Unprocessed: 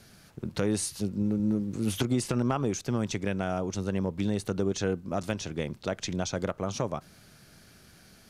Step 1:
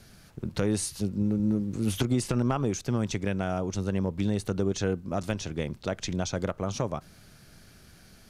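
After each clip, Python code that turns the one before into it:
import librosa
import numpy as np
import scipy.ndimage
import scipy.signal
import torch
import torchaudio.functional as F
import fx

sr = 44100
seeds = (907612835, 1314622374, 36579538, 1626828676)

y = fx.low_shelf(x, sr, hz=68.0, db=10.0)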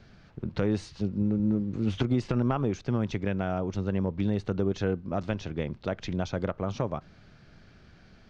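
y = scipy.ndimage.gaussian_filter1d(x, 2.0, mode='constant')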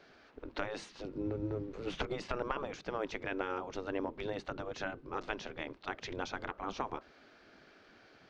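y = fx.spec_gate(x, sr, threshold_db=-10, keep='weak')
y = fx.high_shelf(y, sr, hz=5100.0, db=-7.5)
y = y * 10.0 ** (1.0 / 20.0)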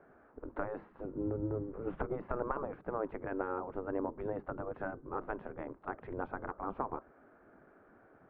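y = scipy.signal.sosfilt(scipy.signal.butter(4, 1400.0, 'lowpass', fs=sr, output='sos'), x)
y = y * 10.0 ** (1.0 / 20.0)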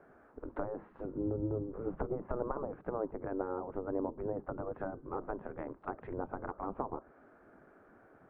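y = fx.env_lowpass_down(x, sr, base_hz=920.0, full_db=-35.0)
y = y * 10.0 ** (1.0 / 20.0)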